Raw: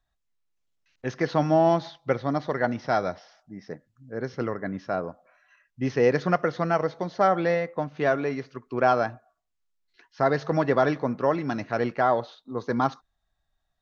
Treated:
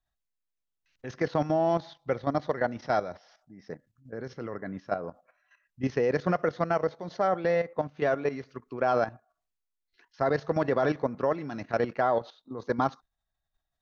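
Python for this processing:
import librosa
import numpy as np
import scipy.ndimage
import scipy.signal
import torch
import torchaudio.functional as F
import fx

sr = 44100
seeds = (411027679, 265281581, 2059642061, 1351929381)

y = fx.dynamic_eq(x, sr, hz=530.0, q=1.6, threshold_db=-30.0, ratio=4.0, max_db=3)
y = fx.level_steps(y, sr, step_db=12)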